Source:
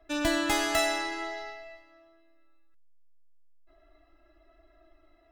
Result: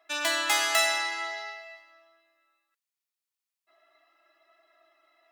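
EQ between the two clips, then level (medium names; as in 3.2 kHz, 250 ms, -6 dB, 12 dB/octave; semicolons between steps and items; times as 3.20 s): high-pass 980 Hz 12 dB/octave; band-stop 1.6 kHz, Q 17; +5.0 dB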